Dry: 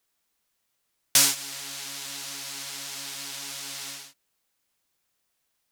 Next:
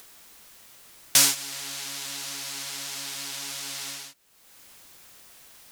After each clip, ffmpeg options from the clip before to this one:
-af "acompressor=mode=upward:threshold=0.0251:ratio=2.5,volume=1.12"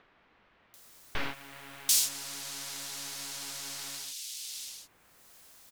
-filter_complex "[0:a]aeval=exprs='(tanh(7.94*val(0)+0.75)-tanh(0.75))/7.94':c=same,acrossover=split=2700[s0][s1];[s1]adelay=740[s2];[s0][s2]amix=inputs=2:normalize=0"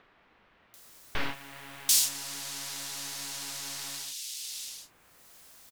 -filter_complex "[0:a]asplit=2[s0][s1];[s1]adelay=35,volume=0.266[s2];[s0][s2]amix=inputs=2:normalize=0,volume=1.19"

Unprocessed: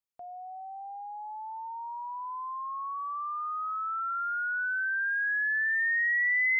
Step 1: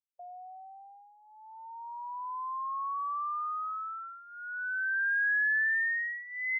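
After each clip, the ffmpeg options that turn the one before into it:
-af "afftdn=nr=22:nf=-48,aecho=1:1:1.8:0.84,volume=0.631"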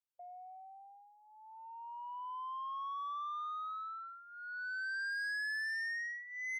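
-af "asoftclip=type=tanh:threshold=0.0266,volume=0.596"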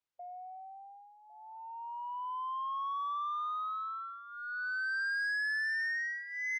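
-af "aecho=1:1:1104:0.112,adynamicsmooth=sensitivity=3:basefreq=5900,volume=1.78"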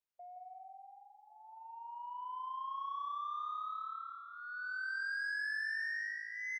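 -af "aecho=1:1:168|336|504|672|840|1008:0.447|0.219|0.107|0.0526|0.0258|0.0126,volume=0.531"

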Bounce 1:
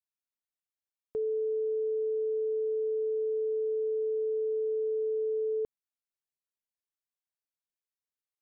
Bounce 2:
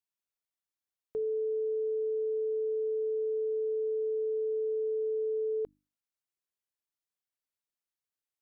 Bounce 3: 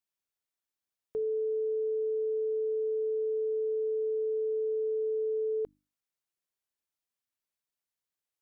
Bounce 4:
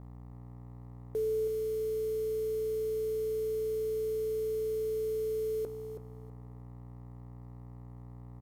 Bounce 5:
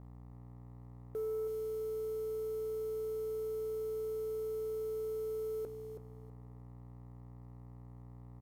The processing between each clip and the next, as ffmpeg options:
-af "bandreject=f=50:t=h:w=6,bandreject=f=100:t=h:w=6,bandreject=f=150:t=h:w=6,bandreject=f=200:t=h:w=6,bandreject=f=250:t=h:w=6,bandreject=f=300:t=h:w=6,volume=0.891"
-af "acontrast=30,volume=0.596"
-af "aeval=exprs='val(0)+0.00447*(sin(2*PI*60*n/s)+sin(2*PI*2*60*n/s)/2+sin(2*PI*3*60*n/s)/3+sin(2*PI*4*60*n/s)/4+sin(2*PI*5*60*n/s)/5)':c=same,acrusher=bits=7:mix=0:aa=0.5,aecho=1:1:324|648|972:0.316|0.0696|0.0153"
-af "asoftclip=type=tanh:threshold=0.0422,volume=0.631"

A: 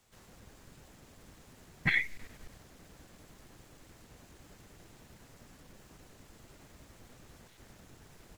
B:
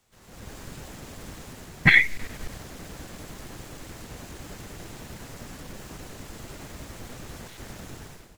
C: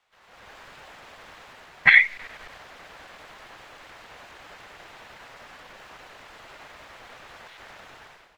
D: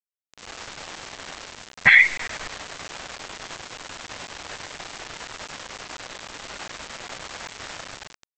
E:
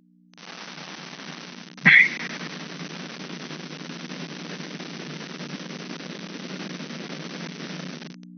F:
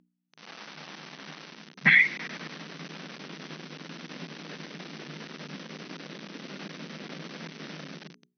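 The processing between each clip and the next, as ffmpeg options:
-af "dynaudnorm=f=100:g=7:m=5.62"
-filter_complex "[0:a]acrossover=split=590 3900:gain=0.0891 1 0.112[s0][s1][s2];[s0][s1][s2]amix=inputs=3:normalize=0,volume=1.41"
-af "aresample=16000,acrusher=bits=6:mix=0:aa=0.000001,aresample=44100,alimiter=level_in=3.35:limit=0.891:release=50:level=0:latency=1,volume=0.794"
-af "aeval=exprs='val(0)+0.00316*(sin(2*PI*60*n/s)+sin(2*PI*2*60*n/s)/2+sin(2*PI*3*60*n/s)/3+sin(2*PI*4*60*n/s)/4+sin(2*PI*5*60*n/s)/5)':c=same,afftfilt=real='re*between(b*sr/4096,140,6200)':imag='im*between(b*sr/4096,140,6200)':win_size=4096:overlap=0.75,asubboost=boost=12:cutoff=240"
-af "lowpass=5400,bandreject=f=60:t=h:w=6,bandreject=f=120:t=h:w=6,bandreject=f=180:t=h:w=6,bandreject=f=240:t=h:w=6,bandreject=f=300:t=h:w=6,bandreject=f=360:t=h:w=6,bandreject=f=420:t=h:w=6,volume=0.562"

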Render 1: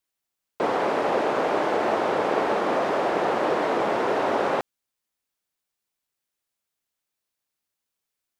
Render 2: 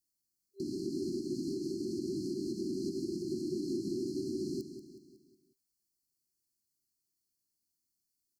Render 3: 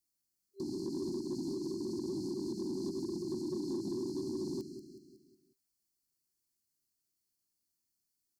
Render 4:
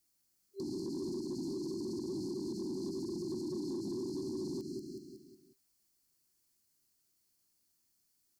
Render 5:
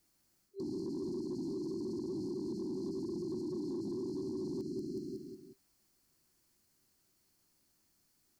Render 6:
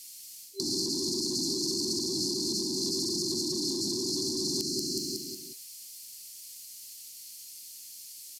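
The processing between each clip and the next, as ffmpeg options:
-filter_complex "[0:a]afftfilt=real='re*(1-between(b*sr/4096,390,4100))':imag='im*(1-between(b*sr/4096,390,4100))':win_size=4096:overlap=0.75,alimiter=level_in=1.68:limit=0.0631:level=0:latency=1:release=149,volume=0.596,asplit=2[s0][s1];[s1]aecho=0:1:184|368|552|736|920:0.299|0.146|0.0717|0.0351|0.0172[s2];[s0][s2]amix=inputs=2:normalize=0"
-af "asoftclip=type=tanh:threshold=0.0355"
-af "alimiter=level_in=6.68:limit=0.0631:level=0:latency=1:release=92,volume=0.15,volume=2.37"
-af "areverse,acompressor=threshold=0.00447:ratio=6,areverse,highshelf=f=3200:g=-9.5,volume=3.16"
-af "aexciter=amount=11.8:drive=7.2:freq=2200,aresample=32000,aresample=44100,volume=1.5"

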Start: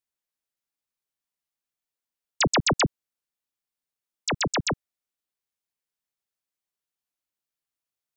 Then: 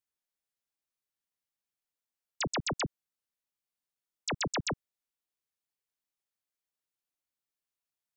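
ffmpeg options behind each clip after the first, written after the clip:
-af "alimiter=level_in=1.06:limit=0.0631:level=0:latency=1,volume=0.944,volume=0.668"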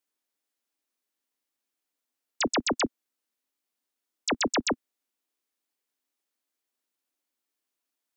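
-af "lowshelf=f=200:t=q:w=3:g=-8.5,volume=1.88"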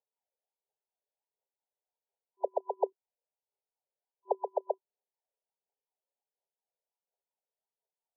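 -af "aphaser=in_gain=1:out_gain=1:delay=2:decay=0.51:speed=1.4:type=triangular,afftfilt=real='re*between(b*sr/4096,380,1000)':imag='im*between(b*sr/4096,380,1000)':win_size=4096:overlap=0.75,volume=0.841"

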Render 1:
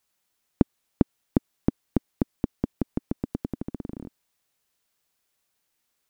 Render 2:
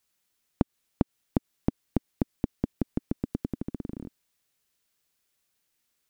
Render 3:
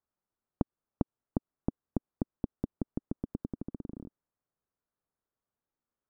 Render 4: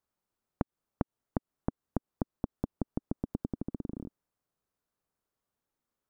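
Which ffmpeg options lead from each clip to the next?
-af "equalizer=f=810:t=o:w=1.4:g=-4.5,acompressor=threshold=0.112:ratio=6"
-af "lowpass=f=1300:w=0.5412,lowpass=f=1300:w=1.3066,volume=0.531"
-af "acompressor=threshold=0.0316:ratio=6,volume=1.5"

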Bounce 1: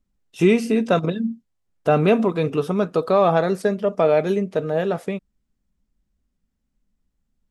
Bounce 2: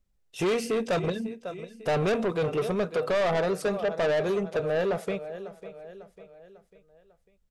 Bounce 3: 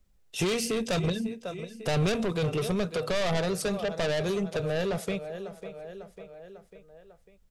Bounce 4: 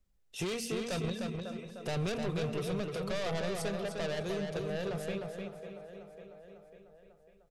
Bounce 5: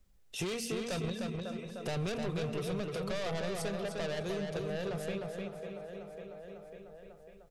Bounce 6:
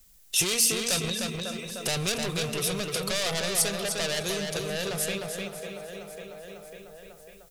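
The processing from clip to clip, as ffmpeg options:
-af "equalizer=f=250:t=o:w=1:g=-10,equalizer=f=500:t=o:w=1:g=4,equalizer=f=1000:t=o:w=1:g=-3,aecho=1:1:548|1096|1644|2192:0.133|0.0613|0.0282|0.013,asoftclip=type=tanh:threshold=0.0794"
-filter_complex "[0:a]acrossover=split=170|3000[s0][s1][s2];[s1]acompressor=threshold=0.00178:ratio=1.5[s3];[s0][s3][s2]amix=inputs=3:normalize=0,volume=2.24"
-filter_complex "[0:a]asplit=2[s0][s1];[s1]adelay=304,lowpass=f=4900:p=1,volume=0.631,asplit=2[s2][s3];[s3]adelay=304,lowpass=f=4900:p=1,volume=0.28,asplit=2[s4][s5];[s5]adelay=304,lowpass=f=4900:p=1,volume=0.28,asplit=2[s6][s7];[s7]adelay=304,lowpass=f=4900:p=1,volume=0.28[s8];[s0][s2][s4][s6][s8]amix=inputs=5:normalize=0,volume=0.398"
-af "acompressor=threshold=0.00178:ratio=1.5,volume=2.37"
-filter_complex "[0:a]crystalizer=i=7.5:c=0,asplit=2[s0][s1];[s1]asoftclip=type=hard:threshold=0.0631,volume=0.376[s2];[s0][s2]amix=inputs=2:normalize=0"

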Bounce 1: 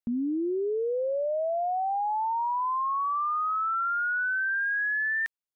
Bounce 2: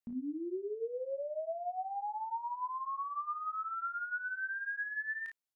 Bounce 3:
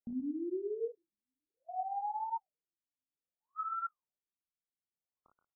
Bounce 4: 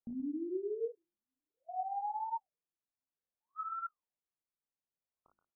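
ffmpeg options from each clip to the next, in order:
-filter_complex "[0:a]alimiter=level_in=3.55:limit=0.0631:level=0:latency=1,volume=0.282,asplit=2[s0][s1];[s1]aecho=0:1:24|35|55:0.422|0.447|0.398[s2];[s0][s2]amix=inputs=2:normalize=0,volume=0.794"
-filter_complex "[0:a]asplit=2[s0][s1];[s1]adelay=128.3,volume=0.251,highshelf=f=4000:g=-2.89[s2];[s0][s2]amix=inputs=2:normalize=0,afftfilt=real='re*lt(b*sr/1024,260*pow(1500/260,0.5+0.5*sin(2*PI*0.6*pts/sr)))':imag='im*lt(b*sr/1024,260*pow(1500/260,0.5+0.5*sin(2*PI*0.6*pts/sr)))':win_size=1024:overlap=0.75,volume=1.12"
-af "lowpass=1400,bandreject=f=50:t=h:w=6,bandreject=f=100:t=h:w=6,bandreject=f=150:t=h:w=6,bandreject=f=200:t=h:w=6,bandreject=f=250:t=h:w=6,bandreject=f=300:t=h:w=6,bandreject=f=350:t=h:w=6"

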